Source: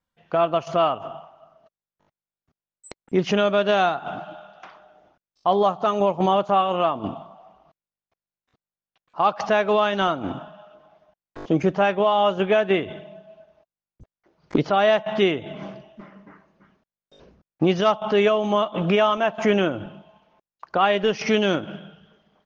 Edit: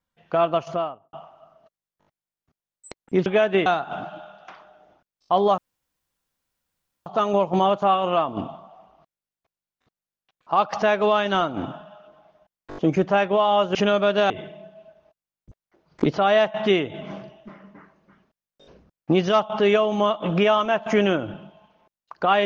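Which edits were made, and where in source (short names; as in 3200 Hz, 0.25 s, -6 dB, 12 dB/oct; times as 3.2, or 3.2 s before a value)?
0.52–1.13 studio fade out
3.26–3.81 swap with 12.42–12.82
5.73 insert room tone 1.48 s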